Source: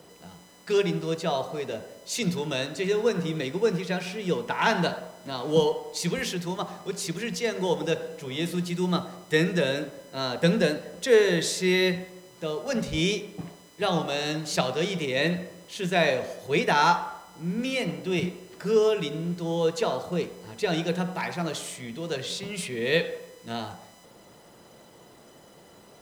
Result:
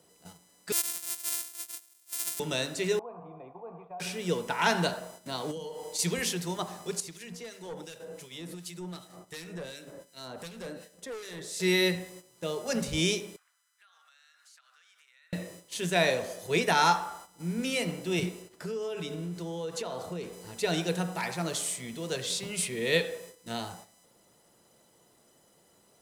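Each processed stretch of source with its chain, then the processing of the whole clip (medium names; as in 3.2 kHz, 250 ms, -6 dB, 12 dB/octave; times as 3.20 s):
0.72–2.40 s: sorted samples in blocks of 128 samples + differentiator
2.99–4.00 s: cascade formant filter a + bass shelf 130 Hz +7 dB + level flattener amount 50%
5.51–5.99 s: doubling 45 ms -12.5 dB + compression 16:1, threshold -32 dBFS
7.00–11.60 s: hard clipper -22 dBFS + compression 5:1, threshold -34 dBFS + harmonic tremolo 2.7 Hz, crossover 1.8 kHz
13.36–15.33 s: ladder high-pass 1.3 kHz, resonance 70% + compression 10:1, threshold -46 dBFS
18.42–20.33 s: treble shelf 4.4 kHz -5 dB + compression, threshold -29 dBFS
whole clip: gate -45 dBFS, range -10 dB; peaking EQ 10 kHz +10.5 dB 1.4 oct; trim -3 dB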